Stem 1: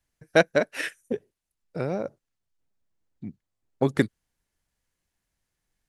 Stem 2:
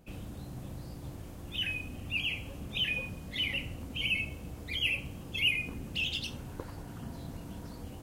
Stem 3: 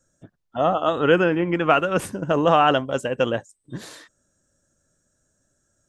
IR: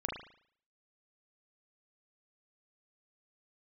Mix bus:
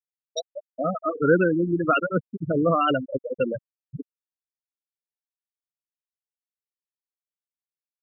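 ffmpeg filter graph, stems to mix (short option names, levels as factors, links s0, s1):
-filter_complex "[0:a]aexciter=amount=5.7:drive=9.8:freq=3600,volume=0.316[s0];[1:a]volume=0.398[s1];[2:a]equalizer=f=740:t=o:w=1.1:g=-7,aeval=exprs='val(0)+0.00355*(sin(2*PI*60*n/s)+sin(2*PI*2*60*n/s)/2+sin(2*PI*3*60*n/s)/3+sin(2*PI*4*60*n/s)/4+sin(2*PI*5*60*n/s)/5)':c=same,adelay=200,volume=1.19[s2];[s0][s1][s2]amix=inputs=3:normalize=0,afftfilt=real='re*gte(hypot(re,im),0.316)':imag='im*gte(hypot(re,im),0.316)':win_size=1024:overlap=0.75,asuperstop=centerf=870:order=4:qfactor=2.8"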